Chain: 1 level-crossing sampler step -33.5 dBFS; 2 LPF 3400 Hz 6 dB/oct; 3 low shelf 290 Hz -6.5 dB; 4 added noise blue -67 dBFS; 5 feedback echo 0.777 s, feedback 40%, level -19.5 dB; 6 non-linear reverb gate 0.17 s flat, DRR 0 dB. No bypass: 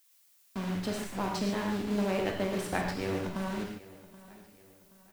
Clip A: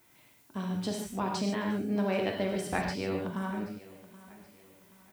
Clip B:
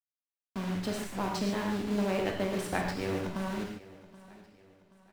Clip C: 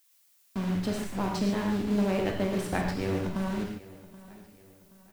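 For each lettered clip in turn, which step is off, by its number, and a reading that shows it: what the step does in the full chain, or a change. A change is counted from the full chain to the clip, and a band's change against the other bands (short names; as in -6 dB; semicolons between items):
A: 1, distortion -9 dB; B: 4, momentary loudness spread change -5 LU; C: 3, 125 Hz band +4.5 dB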